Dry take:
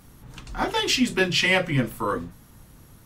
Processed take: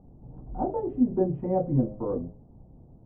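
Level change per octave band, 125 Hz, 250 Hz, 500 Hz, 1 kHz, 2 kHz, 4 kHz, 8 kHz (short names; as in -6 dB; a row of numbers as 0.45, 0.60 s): -0.5 dB, 0.0 dB, -1.0 dB, -6.0 dB, under -40 dB, under -40 dB, under -40 dB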